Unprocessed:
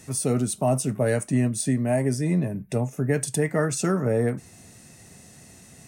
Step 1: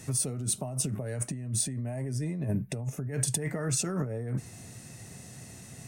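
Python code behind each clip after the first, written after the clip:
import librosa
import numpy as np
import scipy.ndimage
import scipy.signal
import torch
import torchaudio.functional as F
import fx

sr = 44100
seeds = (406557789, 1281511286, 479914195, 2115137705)

y = fx.peak_eq(x, sr, hz=120.0, db=8.0, octaves=0.44)
y = fx.over_compress(y, sr, threshold_db=-27.0, ratio=-1.0)
y = F.gain(torch.from_numpy(y), -5.0).numpy()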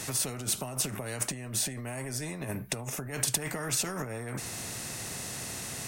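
y = fx.spectral_comp(x, sr, ratio=2.0)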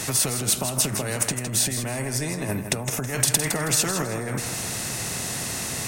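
y = fx.echo_feedback(x, sr, ms=161, feedback_pct=30, wet_db=-8.5)
y = F.gain(torch.from_numpy(y), 8.0).numpy()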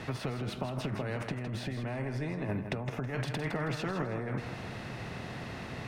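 y = fx.air_absorb(x, sr, metres=360.0)
y = F.gain(torch.from_numpy(y), -5.5).numpy()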